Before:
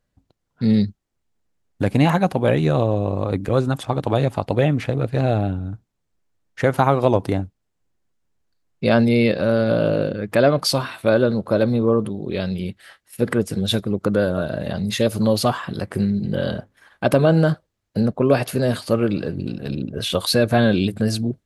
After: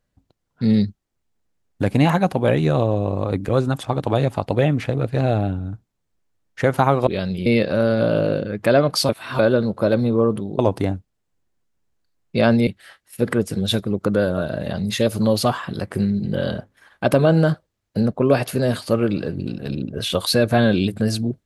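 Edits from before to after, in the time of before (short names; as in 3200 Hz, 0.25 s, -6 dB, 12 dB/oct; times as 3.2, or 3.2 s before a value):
7.07–9.15 swap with 12.28–12.67
10.78–11.08 reverse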